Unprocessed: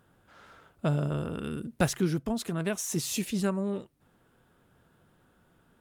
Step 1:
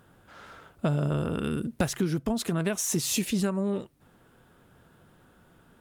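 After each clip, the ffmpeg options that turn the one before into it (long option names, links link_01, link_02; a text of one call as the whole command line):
ffmpeg -i in.wav -af "acompressor=threshold=-29dB:ratio=6,volume=6dB" out.wav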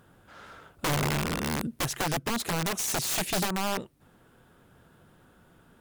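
ffmpeg -i in.wav -af "aeval=exprs='(mod(13.3*val(0)+1,2)-1)/13.3':channel_layout=same" out.wav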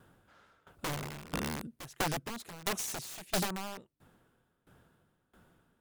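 ffmpeg -i in.wav -af "aeval=exprs='val(0)*pow(10,-21*if(lt(mod(1.5*n/s,1),2*abs(1.5)/1000),1-mod(1.5*n/s,1)/(2*abs(1.5)/1000),(mod(1.5*n/s,1)-2*abs(1.5)/1000)/(1-2*abs(1.5)/1000))/20)':channel_layout=same,volume=-1.5dB" out.wav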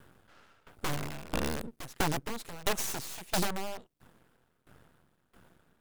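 ffmpeg -i in.wav -af "aeval=exprs='max(val(0),0)':channel_layout=same,volume=7dB" out.wav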